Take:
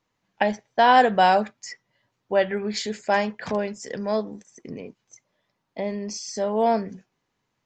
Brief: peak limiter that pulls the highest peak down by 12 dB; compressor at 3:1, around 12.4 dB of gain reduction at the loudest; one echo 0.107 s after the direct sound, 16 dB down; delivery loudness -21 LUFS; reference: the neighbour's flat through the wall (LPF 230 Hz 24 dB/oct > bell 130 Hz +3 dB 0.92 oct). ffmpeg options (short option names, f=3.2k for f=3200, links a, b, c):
-af "acompressor=threshold=-29dB:ratio=3,alimiter=level_in=0.5dB:limit=-24dB:level=0:latency=1,volume=-0.5dB,lowpass=f=230:w=0.5412,lowpass=f=230:w=1.3066,equalizer=f=130:t=o:w=0.92:g=3,aecho=1:1:107:0.158,volume=21.5dB"